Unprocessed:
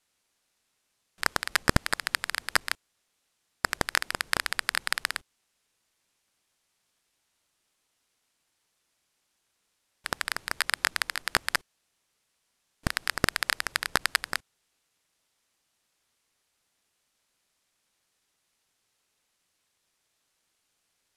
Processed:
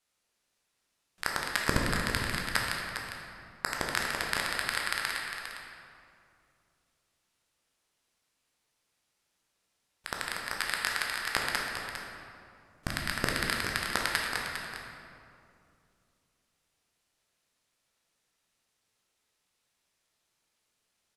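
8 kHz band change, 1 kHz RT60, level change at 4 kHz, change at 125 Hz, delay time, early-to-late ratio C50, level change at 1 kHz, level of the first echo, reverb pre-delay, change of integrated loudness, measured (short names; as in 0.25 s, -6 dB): -3.5 dB, 2.3 s, -2.5 dB, -0.5 dB, 0.404 s, 0.0 dB, -1.5 dB, -9.0 dB, 12 ms, -3.0 dB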